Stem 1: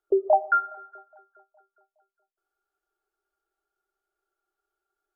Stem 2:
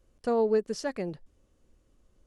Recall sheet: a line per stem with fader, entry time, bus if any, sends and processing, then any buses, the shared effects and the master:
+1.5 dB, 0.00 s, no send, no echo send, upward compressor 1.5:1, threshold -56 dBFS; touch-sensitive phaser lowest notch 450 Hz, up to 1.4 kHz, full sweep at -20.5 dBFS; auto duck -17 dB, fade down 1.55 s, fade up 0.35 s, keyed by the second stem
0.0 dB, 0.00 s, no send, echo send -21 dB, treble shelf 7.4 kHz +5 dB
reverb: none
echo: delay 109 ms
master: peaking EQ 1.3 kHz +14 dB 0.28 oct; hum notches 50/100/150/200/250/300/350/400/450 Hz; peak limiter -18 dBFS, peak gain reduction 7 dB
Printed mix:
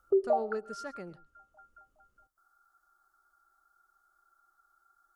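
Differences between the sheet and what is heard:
stem 2 0.0 dB -> -11.0 dB; master: missing hum notches 50/100/150/200/250/300/350/400/450 Hz

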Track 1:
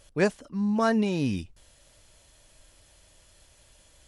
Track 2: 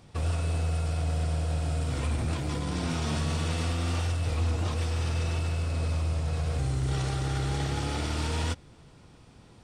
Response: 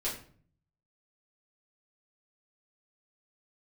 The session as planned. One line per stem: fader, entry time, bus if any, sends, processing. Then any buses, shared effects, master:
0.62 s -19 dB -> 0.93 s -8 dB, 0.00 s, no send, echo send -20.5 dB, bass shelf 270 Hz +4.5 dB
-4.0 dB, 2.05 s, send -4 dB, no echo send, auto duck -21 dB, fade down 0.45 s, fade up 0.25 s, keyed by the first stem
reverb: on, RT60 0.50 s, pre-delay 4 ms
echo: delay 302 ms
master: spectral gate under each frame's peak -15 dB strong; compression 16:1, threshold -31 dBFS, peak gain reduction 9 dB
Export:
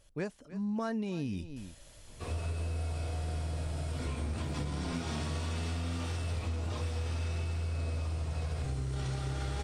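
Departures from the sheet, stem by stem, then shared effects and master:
stem 1 -19.0 dB -> -9.5 dB; master: missing spectral gate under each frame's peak -15 dB strong

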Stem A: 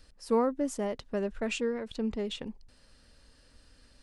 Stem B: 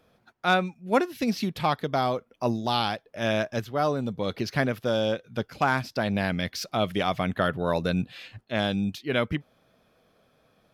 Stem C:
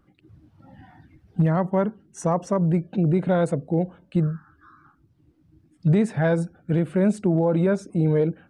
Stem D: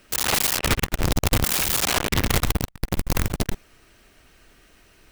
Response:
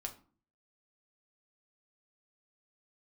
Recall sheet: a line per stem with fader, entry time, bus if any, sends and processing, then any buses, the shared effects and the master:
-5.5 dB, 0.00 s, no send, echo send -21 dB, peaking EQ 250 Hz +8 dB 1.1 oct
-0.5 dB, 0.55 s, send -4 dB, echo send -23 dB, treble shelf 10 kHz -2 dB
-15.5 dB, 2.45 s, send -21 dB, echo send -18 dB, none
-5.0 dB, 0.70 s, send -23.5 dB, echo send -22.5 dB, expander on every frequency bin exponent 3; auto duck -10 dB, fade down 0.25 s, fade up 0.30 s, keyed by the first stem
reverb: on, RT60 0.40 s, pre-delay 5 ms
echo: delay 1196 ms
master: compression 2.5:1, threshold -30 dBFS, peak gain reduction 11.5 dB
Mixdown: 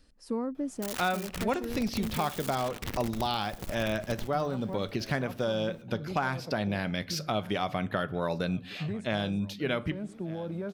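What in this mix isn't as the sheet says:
stem C: entry 2.45 s -> 2.95 s; stem D: missing expander on every frequency bin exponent 3

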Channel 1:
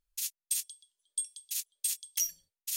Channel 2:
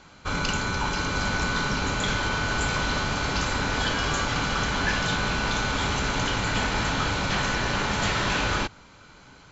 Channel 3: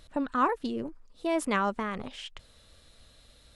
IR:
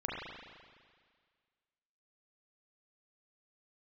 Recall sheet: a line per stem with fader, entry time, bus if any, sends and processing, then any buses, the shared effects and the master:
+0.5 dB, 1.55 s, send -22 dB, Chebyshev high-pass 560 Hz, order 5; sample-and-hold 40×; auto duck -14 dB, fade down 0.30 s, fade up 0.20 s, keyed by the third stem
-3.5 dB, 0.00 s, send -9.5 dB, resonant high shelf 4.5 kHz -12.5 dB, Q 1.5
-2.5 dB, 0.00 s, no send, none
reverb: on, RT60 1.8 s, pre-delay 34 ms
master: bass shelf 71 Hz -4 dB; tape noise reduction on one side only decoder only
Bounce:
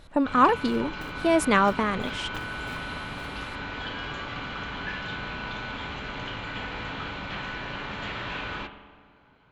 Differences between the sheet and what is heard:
stem 1: entry 1.55 s -> 0.50 s; stem 2 -3.5 dB -> -12.0 dB; stem 3 -2.5 dB -> +7.0 dB

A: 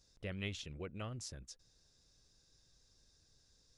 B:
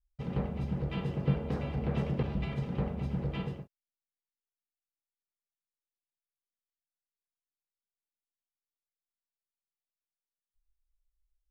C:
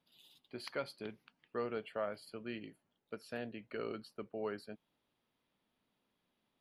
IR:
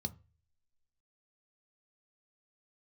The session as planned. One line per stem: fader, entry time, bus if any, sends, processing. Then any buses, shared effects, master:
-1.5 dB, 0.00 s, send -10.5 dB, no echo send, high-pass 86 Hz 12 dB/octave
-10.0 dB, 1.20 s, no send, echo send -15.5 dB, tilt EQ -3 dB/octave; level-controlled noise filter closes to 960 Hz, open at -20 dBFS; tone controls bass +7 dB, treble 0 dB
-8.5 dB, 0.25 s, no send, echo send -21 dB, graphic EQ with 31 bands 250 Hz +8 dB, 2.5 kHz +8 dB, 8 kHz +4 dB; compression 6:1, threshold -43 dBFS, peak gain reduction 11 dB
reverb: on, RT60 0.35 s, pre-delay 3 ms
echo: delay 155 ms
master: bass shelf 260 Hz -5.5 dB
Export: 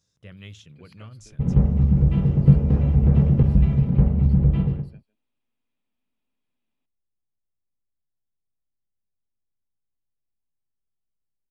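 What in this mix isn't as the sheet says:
stem B -10.0 dB -> +0.5 dB; master: missing bass shelf 260 Hz -5.5 dB

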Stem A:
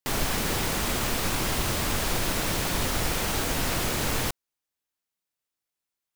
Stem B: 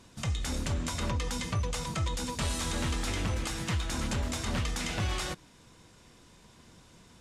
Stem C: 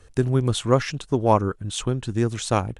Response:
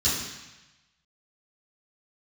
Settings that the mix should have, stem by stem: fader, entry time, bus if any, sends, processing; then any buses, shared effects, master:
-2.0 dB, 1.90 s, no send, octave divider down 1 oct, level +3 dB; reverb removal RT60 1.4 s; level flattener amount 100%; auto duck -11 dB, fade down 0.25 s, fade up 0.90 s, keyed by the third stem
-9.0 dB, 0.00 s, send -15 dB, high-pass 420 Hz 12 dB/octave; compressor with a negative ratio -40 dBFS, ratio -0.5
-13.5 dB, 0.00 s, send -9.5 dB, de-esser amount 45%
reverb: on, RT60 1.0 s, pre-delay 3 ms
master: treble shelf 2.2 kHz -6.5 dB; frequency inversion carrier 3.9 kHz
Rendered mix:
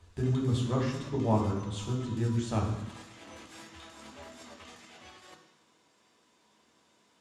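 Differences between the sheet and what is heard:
stem A: muted; master: missing frequency inversion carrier 3.9 kHz

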